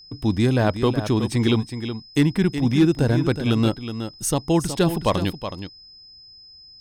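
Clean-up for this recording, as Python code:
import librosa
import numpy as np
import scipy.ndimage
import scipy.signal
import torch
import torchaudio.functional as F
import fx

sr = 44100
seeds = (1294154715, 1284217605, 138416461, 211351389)

y = fx.fix_declip(x, sr, threshold_db=-9.0)
y = fx.notch(y, sr, hz=5100.0, q=30.0)
y = fx.fix_echo_inverse(y, sr, delay_ms=370, level_db=-10.0)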